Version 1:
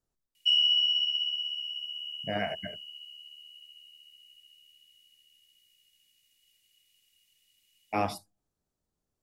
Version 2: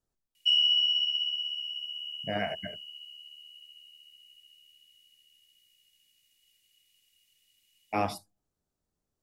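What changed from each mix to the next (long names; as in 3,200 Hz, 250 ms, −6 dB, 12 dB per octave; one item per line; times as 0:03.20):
nothing changed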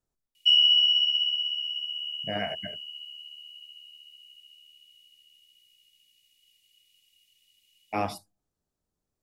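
background: add high-pass with resonance 2,700 Hz, resonance Q 1.6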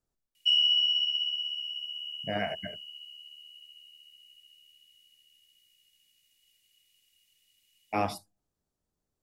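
background: remove high-pass with resonance 2,700 Hz, resonance Q 1.6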